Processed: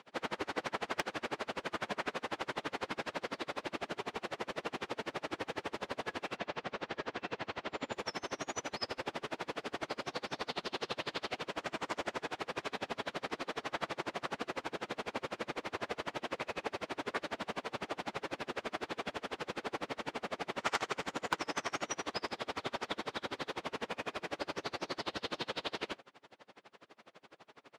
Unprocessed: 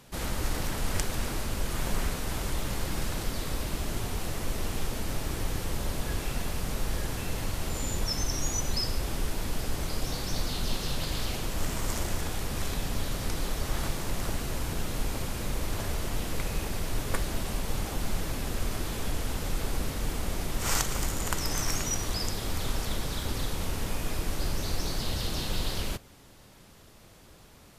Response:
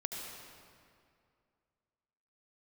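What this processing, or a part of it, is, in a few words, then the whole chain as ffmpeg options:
helicopter radio: -filter_complex "[0:a]asplit=3[s0][s1][s2];[s0]afade=t=out:st=6.36:d=0.02[s3];[s1]lowpass=5300,afade=t=in:st=6.36:d=0.02,afade=t=out:st=7.91:d=0.02[s4];[s2]afade=t=in:st=7.91:d=0.02[s5];[s3][s4][s5]amix=inputs=3:normalize=0,highpass=370,lowpass=2900,aeval=exprs='val(0)*pow(10,-32*(0.5-0.5*cos(2*PI*12*n/s))/20)':c=same,asoftclip=type=hard:threshold=0.0531,volume=2.11"

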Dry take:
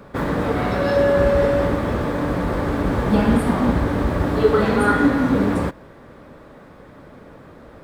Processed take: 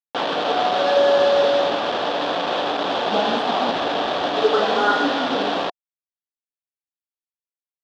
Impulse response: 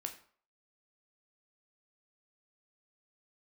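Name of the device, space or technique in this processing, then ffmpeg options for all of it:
hand-held game console: -filter_complex "[0:a]asettb=1/sr,asplit=3[s0][s1][s2];[s0]atrim=end=2.744[s3];[s1]atrim=start=2.74:end=3.68,asetpts=PTS-STARTPTS,afade=t=in:d=0.004:c=qsin,afade=t=out:st=0.936:d=0.004:c=qsin,highpass=f=75:p=1[s4];[s2]atrim=start=3.676[s5];[s3][s4]acrossfade=d=0.004:c1=hsin:c2=qsin[s6];[s6][s5]acrossfade=d=0.004:c1=qsin:c2=hsin,acrusher=bits=3:mix=0:aa=0.000001,highpass=430,equalizer=f=720:t=q:w=4:g=10,equalizer=f=2100:t=q:w=4:g=-8,equalizer=f=3400:t=q:w=4:g=7,lowpass=f=4300:w=0.5412,lowpass=f=4300:w=1.3066"

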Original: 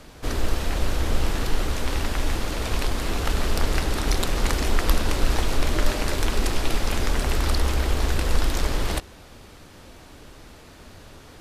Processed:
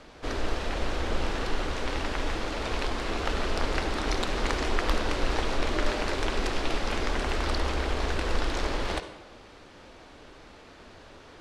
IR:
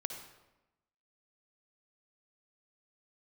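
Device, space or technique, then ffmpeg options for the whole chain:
filtered reverb send: -filter_complex "[0:a]lowpass=f=11000:w=0.5412,lowpass=f=11000:w=1.3066,highshelf=f=5300:g=-6,asplit=2[s0][s1];[s1]highpass=220,lowpass=7000[s2];[1:a]atrim=start_sample=2205[s3];[s2][s3]afir=irnorm=-1:irlink=0,volume=1.26[s4];[s0][s4]amix=inputs=2:normalize=0,volume=0.422"

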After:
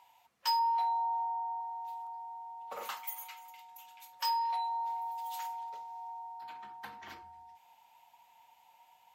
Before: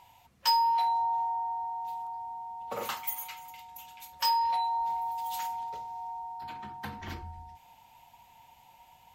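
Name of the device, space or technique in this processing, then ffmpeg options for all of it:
filter by subtraction: -filter_complex "[0:a]asplit=2[s0][s1];[s1]lowpass=940,volume=-1[s2];[s0][s2]amix=inputs=2:normalize=0,asettb=1/sr,asplit=3[s3][s4][s5];[s3]atrim=end=0.594[s6];[s4]atrim=start=0.59:end=1.61,asetpts=PTS-STARTPTS,afade=t=in:d=0.004:c=qsin,afade=t=out:st=1.016:d=0.004:c=qsin,tiltshelf=f=1200:g=4[s7];[s5]atrim=start=1.606[s8];[s6][s7]acrossfade=d=0.004:c1=hsin:c2=qsin[s9];[s9][s8]acrossfade=d=0.004:c1=qsin:c2=hsin,volume=0.473"

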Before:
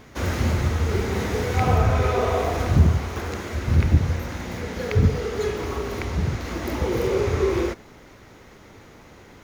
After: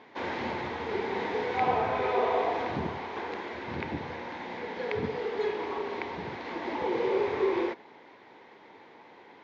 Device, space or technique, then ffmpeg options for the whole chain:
phone earpiece: -af "highpass=360,equalizer=f=600:t=q:w=4:g=-4,equalizer=f=910:t=q:w=4:g=7,equalizer=f=1300:t=q:w=4:g=-9,equalizer=f=2800:t=q:w=4:g=-4,lowpass=f=3700:w=0.5412,lowpass=f=3700:w=1.3066,volume=0.794"

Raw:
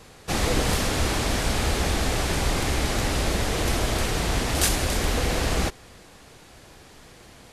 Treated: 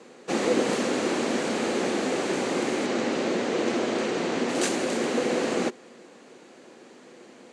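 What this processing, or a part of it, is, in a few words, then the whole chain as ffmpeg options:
television speaker: -filter_complex "[0:a]asettb=1/sr,asplit=3[s0][s1][s2];[s0]atrim=end=2.864[s3];[s1]atrim=start=2.86:end=4.49,asetpts=PTS-STARTPTS,afade=t=in:d=0.004:c=qsin,afade=t=out:st=1.626:d=0.004:c=qsin,lowpass=6800[s4];[s2]atrim=start=4.486[s5];[s3][s4]acrossfade=d=0.004:c1=hsin:c2=qsin[s6];[s6][s5]acrossfade=d=0.004:c1=qsin:c2=hsin,highpass=f=190:w=0.5412,highpass=f=190:w=1.3066,equalizer=f=240:t=q:w=4:g=8,equalizer=f=360:t=q:w=4:g=8,equalizer=f=510:t=q:w=4:g=7,equalizer=f=3500:t=q:w=4:g=-4,equalizer=f=5200:t=q:w=4:g=-6,lowpass=f=7900:w=0.5412,lowpass=f=7900:w=1.3066,volume=0.75"

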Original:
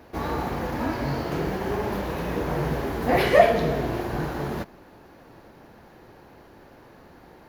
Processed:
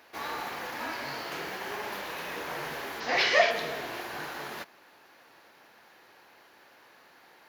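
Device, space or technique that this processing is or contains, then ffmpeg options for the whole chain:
filter by subtraction: -filter_complex "[0:a]asplit=2[s0][s1];[s1]lowpass=2500,volume=-1[s2];[s0][s2]amix=inputs=2:normalize=0,asettb=1/sr,asplit=3[s3][s4][s5];[s3]atrim=end=3.004[s6];[s4]atrim=start=3:end=3.51,asetpts=PTS-STARTPTS,afade=t=in:d=0.004:c=qsin,afade=t=out:st=0.506:d=0.004:c=qsin,highshelf=f=7700:t=q:w=3:g=-13[s7];[s5]atrim=start=3.506[s8];[s6][s7]acrossfade=d=0.004:c1=hsin:c2=qsin[s9];[s9][s8]acrossfade=d=0.004:c1=qsin:c2=hsin"

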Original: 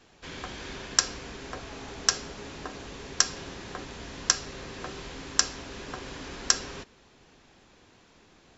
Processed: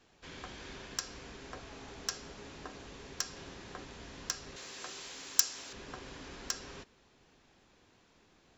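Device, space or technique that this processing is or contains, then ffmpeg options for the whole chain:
limiter into clipper: -filter_complex "[0:a]alimiter=limit=0.398:level=0:latency=1:release=198,asoftclip=type=hard:threshold=0.211,asettb=1/sr,asplit=3[s0][s1][s2];[s0]atrim=end=4.564[s3];[s1]atrim=start=4.56:end=5.73,asetpts=PTS-STARTPTS,afade=t=in:d=0.004:c=qsin,afade=t=out:st=1.166:d=0.004:c=qsin,aemphasis=mode=production:type=riaa[s4];[s2]atrim=start=5.726[s5];[s3][s4]acrossfade=d=0.004:c1=hsin:c2=qsin[s6];[s6][s5]acrossfade=d=0.004:c1=qsin:c2=hsin,volume=0.422"

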